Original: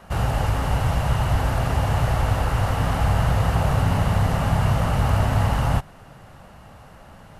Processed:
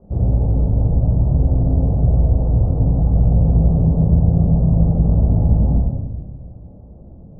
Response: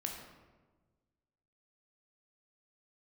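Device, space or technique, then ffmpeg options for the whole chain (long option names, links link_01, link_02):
next room: -filter_complex "[0:a]lowpass=frequency=490:width=0.5412,lowpass=frequency=490:width=1.3066[link_01];[1:a]atrim=start_sample=2205[link_02];[link_01][link_02]afir=irnorm=-1:irlink=0,volume=5dB"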